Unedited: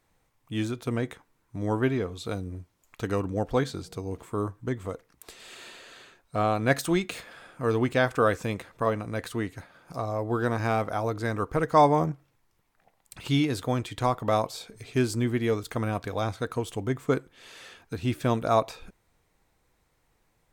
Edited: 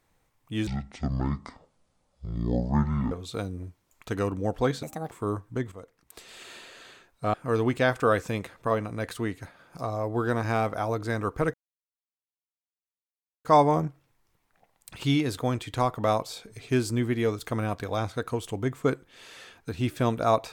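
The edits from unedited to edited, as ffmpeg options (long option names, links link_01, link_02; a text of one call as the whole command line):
ffmpeg -i in.wav -filter_complex "[0:a]asplit=8[link_01][link_02][link_03][link_04][link_05][link_06][link_07][link_08];[link_01]atrim=end=0.674[link_09];[link_02]atrim=start=0.67:end=2.04,asetpts=PTS-STARTPTS,asetrate=24696,aresample=44100,atrim=end_sample=107887,asetpts=PTS-STARTPTS[link_10];[link_03]atrim=start=2.036:end=3.754[link_11];[link_04]atrim=start=3.75:end=4.22,asetpts=PTS-STARTPTS,asetrate=73647,aresample=44100,atrim=end_sample=12411,asetpts=PTS-STARTPTS[link_12];[link_05]atrim=start=4.216:end=4.83,asetpts=PTS-STARTPTS,afade=type=out:start_time=0.61:duration=0.004:curve=hsin:silence=0.223872[link_13];[link_06]atrim=start=4.83:end=6.452,asetpts=PTS-STARTPTS,afade=type=in:duration=0.54:silence=0.223872[link_14];[link_07]atrim=start=7.488:end=11.69,asetpts=PTS-STARTPTS,afade=type=out:start_time=4.198:duration=0.004:curve=hsin,apad=pad_dur=1.91[link_15];[link_08]atrim=start=11.69,asetpts=PTS-STARTPTS,afade=type=in:duration=0.004:curve=hsin[link_16];[link_09][link_10]acrossfade=duration=0.004:curve1=hsin:curve2=hsin[link_17];[link_17][link_11]acrossfade=duration=0.004:curve1=hsin:curve2=hsin[link_18];[link_18][link_12]acrossfade=duration=0.004:curve1=hsin:curve2=hsin[link_19];[link_13][link_14]concat=n=2:v=0:a=1[link_20];[link_19][link_20]acrossfade=duration=0.004:curve1=hsin:curve2=hsin[link_21];[link_15][link_16]concat=n=2:v=0:a=1[link_22];[link_21][link_22]acrossfade=duration=0.004:curve1=hsin:curve2=hsin" out.wav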